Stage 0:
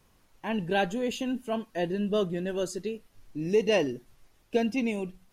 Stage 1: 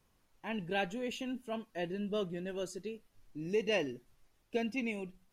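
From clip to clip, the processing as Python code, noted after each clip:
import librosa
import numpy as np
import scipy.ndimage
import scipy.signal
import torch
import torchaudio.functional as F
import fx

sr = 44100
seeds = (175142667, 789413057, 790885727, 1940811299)

y = fx.dynamic_eq(x, sr, hz=2300.0, q=2.3, threshold_db=-49.0, ratio=4.0, max_db=7)
y = y * 10.0 ** (-8.5 / 20.0)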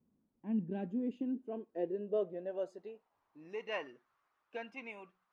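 y = fx.filter_sweep_bandpass(x, sr, from_hz=230.0, to_hz=1200.0, start_s=0.75, end_s=3.63, q=3.1)
y = y * 10.0 ** (7.0 / 20.0)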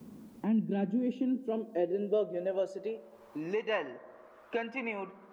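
y = fx.rev_fdn(x, sr, rt60_s=1.3, lf_ratio=0.9, hf_ratio=0.25, size_ms=28.0, drr_db=15.5)
y = fx.band_squash(y, sr, depth_pct=70)
y = y * 10.0 ** (6.5 / 20.0)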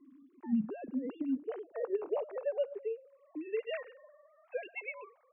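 y = fx.sine_speech(x, sr)
y = y * 10.0 ** (-4.0 / 20.0)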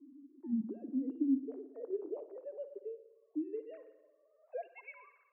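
y = fx.rev_spring(x, sr, rt60_s=1.1, pass_ms=(57,), chirp_ms=70, drr_db=12.0)
y = fx.filter_sweep_bandpass(y, sr, from_hz=300.0, to_hz=1600.0, start_s=4.18, end_s=4.96, q=4.7)
y = y * 10.0 ** (5.0 / 20.0)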